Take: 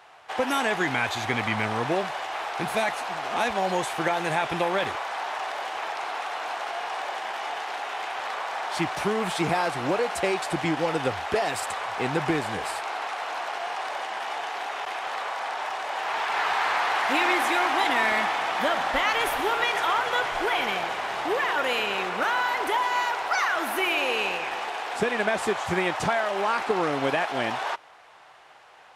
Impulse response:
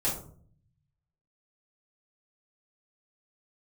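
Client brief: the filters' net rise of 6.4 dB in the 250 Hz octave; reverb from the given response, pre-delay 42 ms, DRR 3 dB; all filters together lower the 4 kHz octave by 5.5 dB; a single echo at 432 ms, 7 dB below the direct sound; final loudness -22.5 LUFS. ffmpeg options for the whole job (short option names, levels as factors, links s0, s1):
-filter_complex "[0:a]equalizer=f=250:t=o:g=9,equalizer=f=4000:t=o:g=-8,aecho=1:1:432:0.447,asplit=2[s0][s1];[1:a]atrim=start_sample=2205,adelay=42[s2];[s1][s2]afir=irnorm=-1:irlink=0,volume=0.299[s3];[s0][s3]amix=inputs=2:normalize=0"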